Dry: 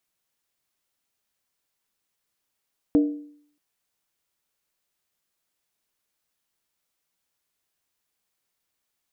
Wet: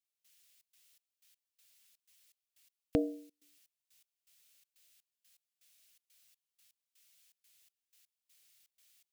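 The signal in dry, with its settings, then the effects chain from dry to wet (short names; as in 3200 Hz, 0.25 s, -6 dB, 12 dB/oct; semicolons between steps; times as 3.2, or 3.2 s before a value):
skin hit, lowest mode 294 Hz, decay 0.61 s, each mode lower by 10.5 dB, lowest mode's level -12.5 dB
EQ curve 150 Hz 0 dB, 300 Hz -12 dB, 430 Hz -4 dB, 630 Hz 0 dB, 920 Hz -7 dB, 2700 Hz +12 dB; step gate "..xxx.xx..x" 123 bpm -24 dB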